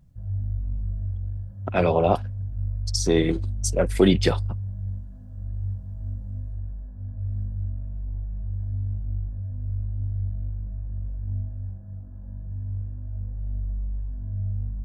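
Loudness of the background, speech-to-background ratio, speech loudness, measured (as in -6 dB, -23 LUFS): -32.0 LUFS, 9.0 dB, -23.0 LUFS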